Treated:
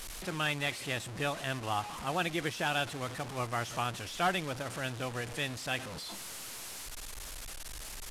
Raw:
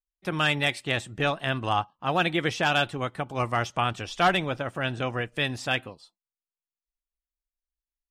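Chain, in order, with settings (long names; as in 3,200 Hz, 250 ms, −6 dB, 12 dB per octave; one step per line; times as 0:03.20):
linear delta modulator 64 kbit/s, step −28 dBFS
level −8 dB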